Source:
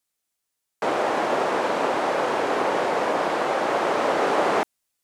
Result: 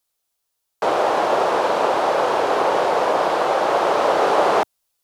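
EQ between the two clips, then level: graphic EQ 125/250/2000/8000 Hz -4/-9/-7/-5 dB; +7.0 dB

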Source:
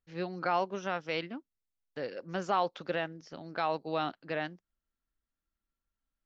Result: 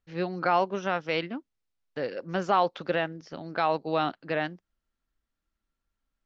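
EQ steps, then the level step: distance through air 69 m; +6.0 dB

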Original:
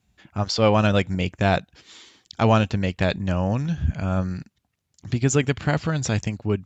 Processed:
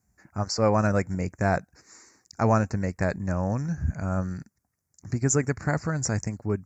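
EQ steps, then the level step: Chebyshev band-stop 1.8–5.7 kHz, order 2; treble shelf 5.6 kHz +7.5 dB; -3.0 dB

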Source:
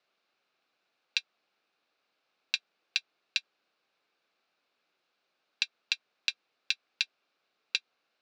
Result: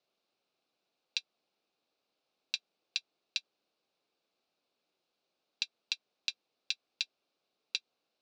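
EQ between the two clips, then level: low-pass 7.9 kHz; peaking EQ 1.7 kHz -12.5 dB 1.5 oct; 0.0 dB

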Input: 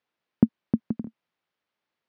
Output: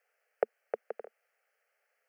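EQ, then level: elliptic high-pass 440 Hz; static phaser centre 1 kHz, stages 6; +10.5 dB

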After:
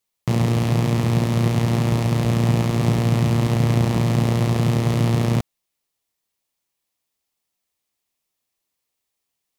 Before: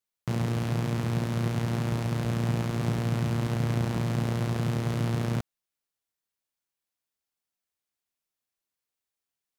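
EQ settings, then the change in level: peaking EQ 1.5 kHz -8 dB 0.28 oct; +9.0 dB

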